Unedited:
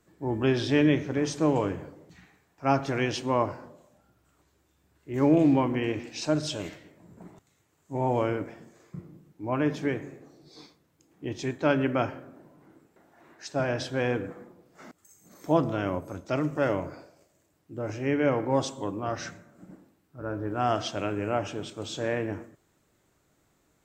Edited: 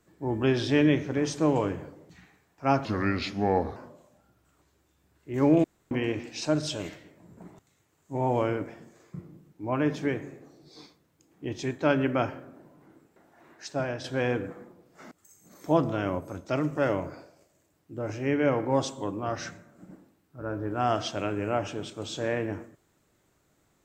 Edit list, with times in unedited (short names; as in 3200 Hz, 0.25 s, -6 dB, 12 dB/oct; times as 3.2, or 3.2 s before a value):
2.85–3.56 speed 78%
5.44–5.71 room tone
13.47–13.84 fade out, to -7.5 dB